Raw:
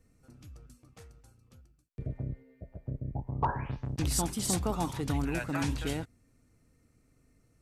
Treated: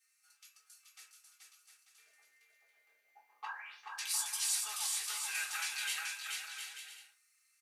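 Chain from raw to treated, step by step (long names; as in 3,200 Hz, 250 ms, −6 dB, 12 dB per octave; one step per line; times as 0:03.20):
Bessel high-pass filter 2,400 Hz, order 4
brickwall limiter −29 dBFS, peak gain reduction 10.5 dB
bouncing-ball delay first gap 430 ms, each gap 0.65×, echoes 5
convolution reverb RT60 0.30 s, pre-delay 3 ms, DRR −4.5 dB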